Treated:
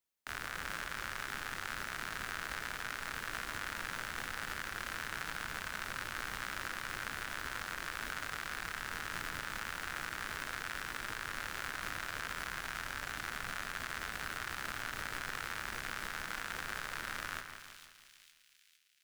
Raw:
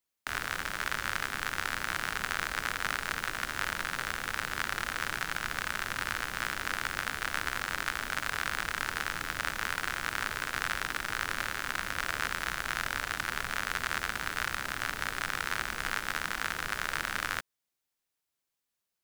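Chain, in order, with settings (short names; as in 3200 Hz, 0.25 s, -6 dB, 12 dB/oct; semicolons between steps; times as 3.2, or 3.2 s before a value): limiter -20 dBFS, peak gain reduction 8 dB; on a send: split-band echo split 2600 Hz, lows 0.167 s, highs 0.455 s, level -7.5 dB; on the sum: gain -3.5 dB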